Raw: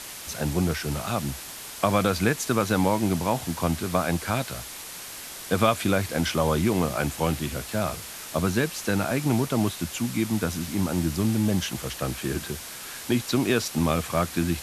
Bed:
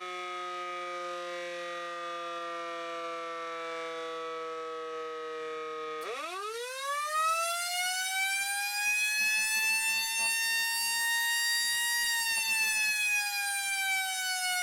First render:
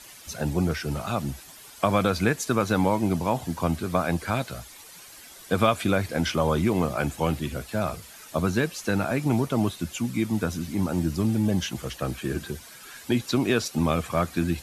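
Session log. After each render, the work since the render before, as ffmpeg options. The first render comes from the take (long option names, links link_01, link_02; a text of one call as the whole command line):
ffmpeg -i in.wav -af "afftdn=noise_reduction=11:noise_floor=-39" out.wav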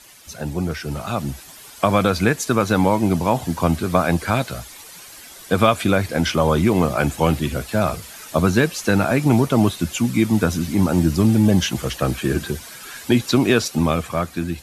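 ffmpeg -i in.wav -af "dynaudnorm=framelen=230:gausssize=9:maxgain=9.5dB" out.wav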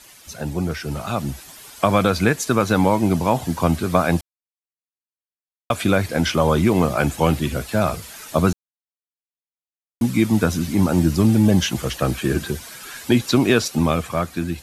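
ffmpeg -i in.wav -filter_complex "[0:a]asplit=5[link_01][link_02][link_03][link_04][link_05];[link_01]atrim=end=4.21,asetpts=PTS-STARTPTS,afade=type=out:start_time=4.206:duration=0.004:curve=hsin[link_06];[link_02]atrim=start=4.21:end=5.7,asetpts=PTS-STARTPTS,volume=0[link_07];[link_03]atrim=start=5.7:end=8.53,asetpts=PTS-STARTPTS,afade=type=in:duration=0.004:curve=hsin,afade=type=out:start_time=2.826:duration=0.004:curve=hsin[link_08];[link_04]atrim=start=8.53:end=10.01,asetpts=PTS-STARTPTS,volume=0[link_09];[link_05]atrim=start=10.01,asetpts=PTS-STARTPTS,afade=type=in:duration=0.004:curve=hsin[link_10];[link_06][link_07][link_08][link_09][link_10]concat=n=5:v=0:a=1" out.wav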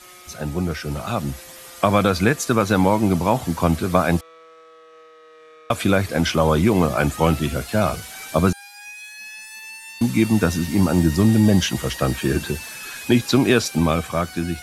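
ffmpeg -i in.wav -i bed.wav -filter_complex "[1:a]volume=-9dB[link_01];[0:a][link_01]amix=inputs=2:normalize=0" out.wav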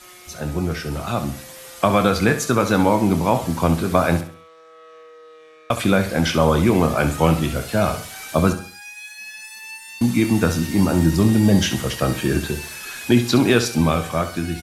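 ffmpeg -i in.wav -filter_complex "[0:a]asplit=2[link_01][link_02];[link_02]adelay=25,volume=-11.5dB[link_03];[link_01][link_03]amix=inputs=2:normalize=0,aecho=1:1:67|134|201|268:0.282|0.104|0.0386|0.0143" out.wav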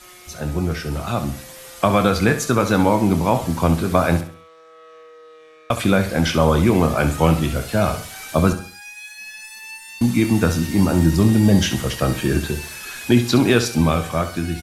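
ffmpeg -i in.wav -af "lowshelf=frequency=62:gain=7.5" out.wav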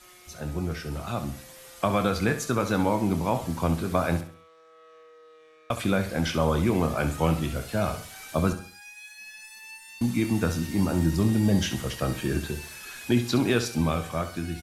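ffmpeg -i in.wav -af "volume=-8dB" out.wav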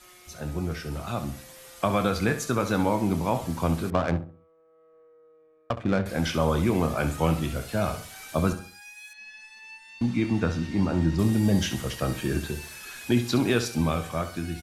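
ffmpeg -i in.wav -filter_complex "[0:a]asettb=1/sr,asplit=3[link_01][link_02][link_03];[link_01]atrim=end=3.904[link_04];[link_02]atrim=start=3.9:end=6.06,asetpts=PTS-STARTPTS,afade=type=in:duration=0.004:curve=qsin,afade=type=out:start_time=2.156:duration=0.004:curve=qsin,adynamicsmooth=sensitivity=2:basefreq=580[link_05];[link_03]atrim=start=6.056[link_06];[link_04][link_05]acrossfade=duration=0.004:curve1=hsin:curve2=qsin[link_07];[link_07][link_06]acrossfade=duration=0.004:curve1=qsin:curve2=hsin,asettb=1/sr,asplit=3[link_08][link_09][link_10];[link_08]atrim=end=9.134[link_11];[link_09]atrim=start=9.13:end=11.19,asetpts=PTS-STARTPTS,afade=type=in:duration=0.004:curve=qsin,afade=type=out:start_time=2.056:duration=0.004:curve=qsin,lowpass=4300[link_12];[link_10]atrim=start=11.186[link_13];[link_11][link_12]acrossfade=duration=0.004:curve1=hsin:curve2=qsin[link_14];[link_14][link_13]acrossfade=duration=0.004:curve1=qsin:curve2=hsin" out.wav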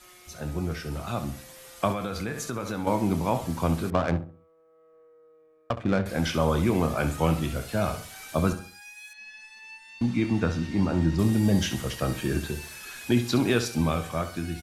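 ffmpeg -i in.wav -filter_complex "[0:a]asettb=1/sr,asplit=3[link_01][link_02][link_03];[link_01]atrim=end=1.924[link_04];[link_02]atrim=start=1.92:end=2.87,asetpts=PTS-STARTPTS,afade=type=in:duration=0.004:curve=qsin,afade=type=out:start_time=0.946:duration=0.004:curve=qsin,acompressor=threshold=-29dB:ratio=3:attack=3.2:release=140:knee=1:detection=peak[link_05];[link_03]atrim=start=2.866[link_06];[link_04][link_05]acrossfade=duration=0.004:curve1=hsin:curve2=qsin[link_07];[link_07][link_06]acrossfade=duration=0.004:curve1=qsin:curve2=hsin" out.wav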